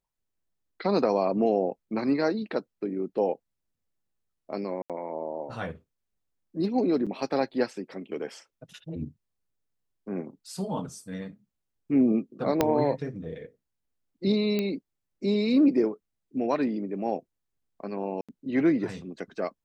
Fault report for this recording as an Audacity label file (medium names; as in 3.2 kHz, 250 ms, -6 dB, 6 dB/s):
4.820000	4.900000	dropout 77 ms
7.060000	7.070000	dropout 6.2 ms
12.610000	12.610000	pop -8 dBFS
14.590000	14.590000	pop -15 dBFS
18.210000	18.290000	dropout 76 ms